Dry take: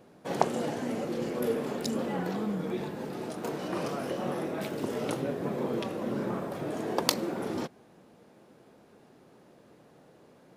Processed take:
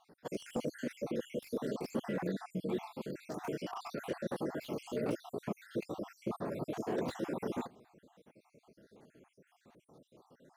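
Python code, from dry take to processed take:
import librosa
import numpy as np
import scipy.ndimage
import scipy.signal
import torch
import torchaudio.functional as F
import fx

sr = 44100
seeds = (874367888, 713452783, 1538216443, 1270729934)

y = fx.spec_dropout(x, sr, seeds[0], share_pct=62)
y = fx.slew_limit(y, sr, full_power_hz=25.0)
y = F.gain(torch.from_numpy(y), -2.0).numpy()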